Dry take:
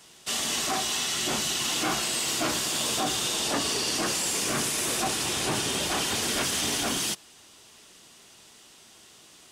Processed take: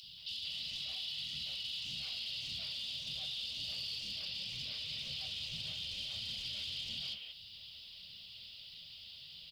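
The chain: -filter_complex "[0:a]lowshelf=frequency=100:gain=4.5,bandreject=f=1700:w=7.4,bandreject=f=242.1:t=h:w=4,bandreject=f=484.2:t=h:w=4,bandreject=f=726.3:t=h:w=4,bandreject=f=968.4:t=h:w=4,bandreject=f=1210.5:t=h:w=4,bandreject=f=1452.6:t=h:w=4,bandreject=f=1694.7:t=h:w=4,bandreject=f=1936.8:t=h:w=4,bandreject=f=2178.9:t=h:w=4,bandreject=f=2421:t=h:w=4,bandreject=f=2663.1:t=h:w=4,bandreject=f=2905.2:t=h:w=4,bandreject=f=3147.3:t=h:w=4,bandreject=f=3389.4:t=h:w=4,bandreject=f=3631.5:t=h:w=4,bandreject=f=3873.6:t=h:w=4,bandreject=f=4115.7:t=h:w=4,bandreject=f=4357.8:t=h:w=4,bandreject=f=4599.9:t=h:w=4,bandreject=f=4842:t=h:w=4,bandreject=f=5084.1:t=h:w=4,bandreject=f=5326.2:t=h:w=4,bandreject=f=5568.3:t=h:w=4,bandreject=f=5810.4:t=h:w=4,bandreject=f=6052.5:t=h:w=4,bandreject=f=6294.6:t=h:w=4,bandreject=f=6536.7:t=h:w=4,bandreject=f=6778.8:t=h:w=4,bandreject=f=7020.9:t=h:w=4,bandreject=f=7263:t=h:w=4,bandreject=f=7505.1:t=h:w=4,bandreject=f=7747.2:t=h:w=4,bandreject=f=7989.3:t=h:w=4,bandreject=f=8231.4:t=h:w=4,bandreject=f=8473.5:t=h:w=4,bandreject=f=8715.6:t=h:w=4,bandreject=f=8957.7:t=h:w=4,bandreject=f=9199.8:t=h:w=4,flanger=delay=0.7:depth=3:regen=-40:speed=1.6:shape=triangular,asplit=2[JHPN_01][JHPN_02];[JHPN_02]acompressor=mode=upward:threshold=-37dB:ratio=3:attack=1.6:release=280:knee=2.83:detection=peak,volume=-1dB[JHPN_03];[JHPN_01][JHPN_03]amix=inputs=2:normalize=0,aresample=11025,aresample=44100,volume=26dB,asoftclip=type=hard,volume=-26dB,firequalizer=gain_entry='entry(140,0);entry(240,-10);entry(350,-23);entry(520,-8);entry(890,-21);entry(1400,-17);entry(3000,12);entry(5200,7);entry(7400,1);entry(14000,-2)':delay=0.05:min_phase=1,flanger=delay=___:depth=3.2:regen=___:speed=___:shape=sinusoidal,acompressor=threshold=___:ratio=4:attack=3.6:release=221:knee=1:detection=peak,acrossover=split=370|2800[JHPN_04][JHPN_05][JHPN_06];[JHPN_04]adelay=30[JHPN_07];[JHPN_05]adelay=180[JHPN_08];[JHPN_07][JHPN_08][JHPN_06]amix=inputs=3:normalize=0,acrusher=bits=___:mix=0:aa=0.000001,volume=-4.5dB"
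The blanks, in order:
9.9, -67, 0.48, -32dB, 10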